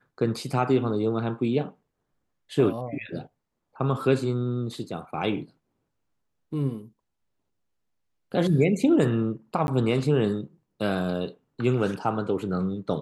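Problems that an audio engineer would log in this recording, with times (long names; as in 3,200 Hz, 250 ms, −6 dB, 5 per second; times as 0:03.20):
0:09.67–0:09.68: drop-out 11 ms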